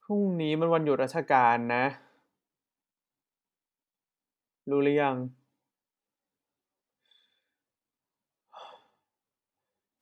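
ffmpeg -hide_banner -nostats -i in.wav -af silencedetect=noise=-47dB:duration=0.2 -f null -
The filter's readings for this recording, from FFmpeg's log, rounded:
silence_start: 2.01
silence_end: 4.67 | silence_duration: 2.66
silence_start: 5.31
silence_end: 8.54 | silence_duration: 3.23
silence_start: 8.76
silence_end: 10.02 | silence_duration: 1.26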